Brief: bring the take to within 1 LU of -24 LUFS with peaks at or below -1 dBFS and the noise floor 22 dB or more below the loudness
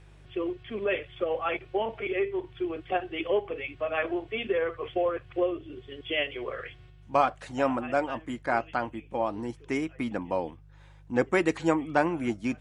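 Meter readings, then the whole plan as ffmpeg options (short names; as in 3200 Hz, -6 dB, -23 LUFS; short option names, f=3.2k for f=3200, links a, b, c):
hum 50 Hz; harmonics up to 150 Hz; hum level -51 dBFS; loudness -30.0 LUFS; peak -9.0 dBFS; loudness target -24.0 LUFS
-> -af "bandreject=f=50:t=h:w=4,bandreject=f=100:t=h:w=4,bandreject=f=150:t=h:w=4"
-af "volume=6dB"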